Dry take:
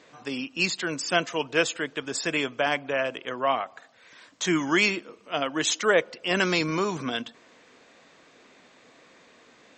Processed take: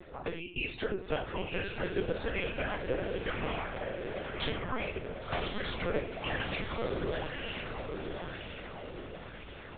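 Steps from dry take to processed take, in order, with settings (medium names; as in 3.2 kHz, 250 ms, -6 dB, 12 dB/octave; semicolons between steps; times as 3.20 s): spectral gate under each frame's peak -30 dB strong; tilt EQ -2.5 dB/octave; de-hum 97.49 Hz, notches 29; ring modulator 83 Hz; compression 6:1, threshold -38 dBFS, peak gain reduction 20 dB; harmonic-percussive split percussive +8 dB; echo that smears into a reverb 1089 ms, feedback 50%, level -3.5 dB; reverberation, pre-delay 3 ms, DRR 3.5 dB; LPC vocoder at 8 kHz pitch kept; sweeping bell 1 Hz 350–2800 Hz +7 dB; trim -2 dB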